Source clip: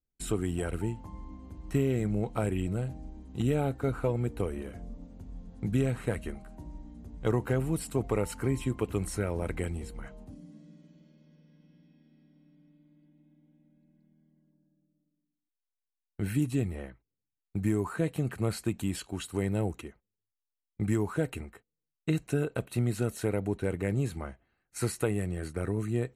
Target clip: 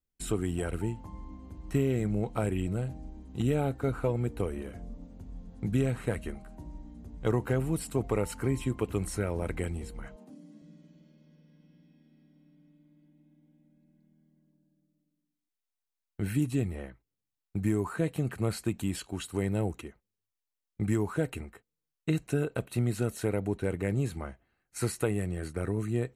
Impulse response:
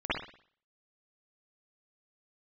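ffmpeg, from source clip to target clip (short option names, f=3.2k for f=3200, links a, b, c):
-filter_complex "[0:a]asettb=1/sr,asplit=3[a][b][c];[a]atrim=end=10.164[d];[b]atrim=start=10.16:end=10.62,asetpts=PTS-STARTPTS,afade=t=in:d=0.004:c=qsin,afade=t=out:st=0.456:d=0.004:c=qsin,highpass=f=190:w=0.5412,highpass=f=190:w=1.3066[e];[c]atrim=start=10.616[f];[d][e]acrossfade=d=0.004:c1=hsin:c2=qsin[g];[g][f]acrossfade=d=0.004:c1=qsin:c2=hsin"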